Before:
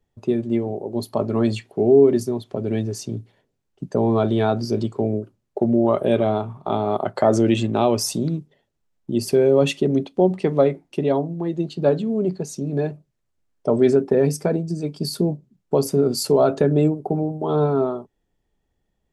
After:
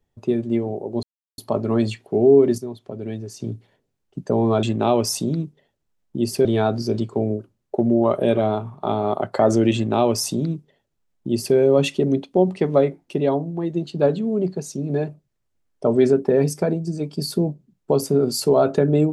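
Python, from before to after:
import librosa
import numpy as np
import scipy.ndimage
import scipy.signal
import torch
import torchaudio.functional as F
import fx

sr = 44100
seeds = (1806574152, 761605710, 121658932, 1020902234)

y = fx.edit(x, sr, fx.insert_silence(at_s=1.03, length_s=0.35),
    fx.clip_gain(start_s=2.23, length_s=0.82, db=-6.5),
    fx.duplicate(start_s=7.57, length_s=1.82, to_s=4.28), tone=tone)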